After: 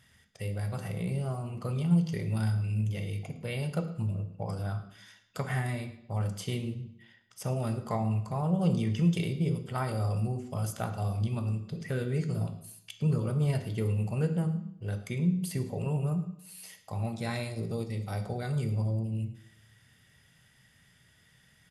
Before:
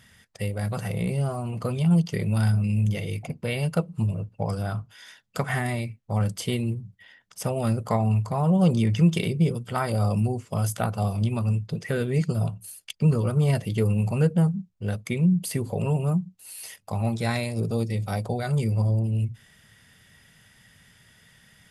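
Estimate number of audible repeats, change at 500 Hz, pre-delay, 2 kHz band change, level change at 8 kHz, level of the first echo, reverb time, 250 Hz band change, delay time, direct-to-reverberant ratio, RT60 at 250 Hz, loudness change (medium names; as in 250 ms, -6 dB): 1, -7.0 dB, 3 ms, -7.5 dB, -7.5 dB, -18.5 dB, 0.70 s, -6.5 dB, 109 ms, 7.0 dB, 0.75 s, -6.5 dB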